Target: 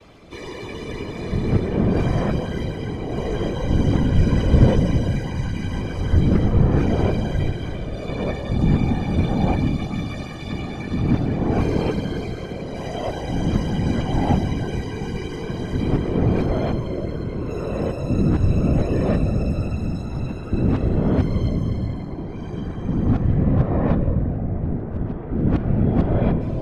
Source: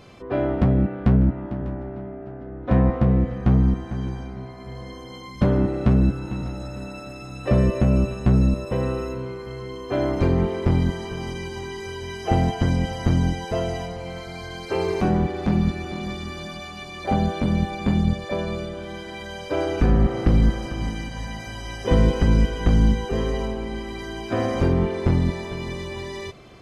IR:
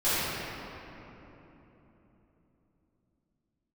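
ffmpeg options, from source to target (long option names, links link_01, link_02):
-filter_complex "[0:a]areverse,asplit=2[link_01][link_02];[1:a]atrim=start_sample=2205,lowshelf=frequency=360:gain=8.5[link_03];[link_02][link_03]afir=irnorm=-1:irlink=0,volume=-22.5dB[link_04];[link_01][link_04]amix=inputs=2:normalize=0,afftfilt=real='hypot(re,im)*cos(2*PI*random(0))':imag='hypot(re,im)*sin(2*PI*random(1))':win_size=512:overlap=0.75,volume=4dB"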